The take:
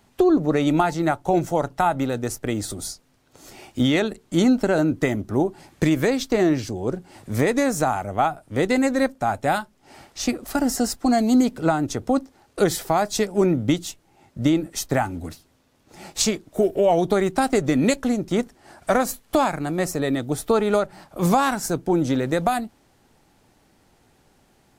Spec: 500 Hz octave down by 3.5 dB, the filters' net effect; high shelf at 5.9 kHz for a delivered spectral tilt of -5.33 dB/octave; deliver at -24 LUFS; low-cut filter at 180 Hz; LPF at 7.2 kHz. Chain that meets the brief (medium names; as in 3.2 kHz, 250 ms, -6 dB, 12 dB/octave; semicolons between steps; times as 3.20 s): high-pass 180 Hz; low-pass 7.2 kHz; peaking EQ 500 Hz -4.5 dB; treble shelf 5.9 kHz -6.5 dB; trim +1 dB